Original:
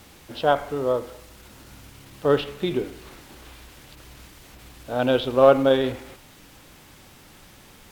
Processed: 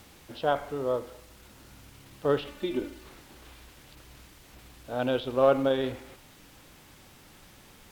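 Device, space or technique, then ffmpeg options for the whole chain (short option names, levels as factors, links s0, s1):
de-esser from a sidechain: -filter_complex "[0:a]asettb=1/sr,asplit=3[s0][s1][s2];[s0]atrim=end=2.474[s3];[s1]atrim=start=2.47:end=3.04,asetpts=PTS-STARTPTS,afade=t=in:d=0.004:c=qsin,afade=t=out:st=0.566:d=0.004:c=qsin,aecho=1:1:3.4:0.9,atrim=end_sample=25137[s4];[s2]atrim=start=3.036[s5];[s3][s4]acrossfade=d=0.004:c1=hsin:c2=qsin[s6];[s6][s5]acrossfade=d=0.004:c1=qsin:c2=hsin,asplit=2[s7][s8];[s8]highpass=f=6600:w=0.5412,highpass=f=6600:w=1.3066,apad=whole_len=348859[s9];[s7][s9]sidechaincompress=threshold=0.00126:ratio=8:attack=16:release=54,volume=0.794"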